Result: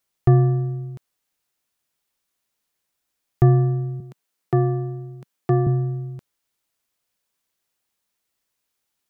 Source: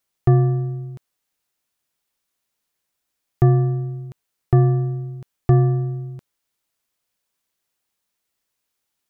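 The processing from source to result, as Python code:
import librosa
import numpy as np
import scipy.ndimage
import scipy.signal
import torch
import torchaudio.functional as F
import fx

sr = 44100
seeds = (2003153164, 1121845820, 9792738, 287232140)

y = fx.highpass(x, sr, hz=150.0, slope=24, at=(4.0, 5.67))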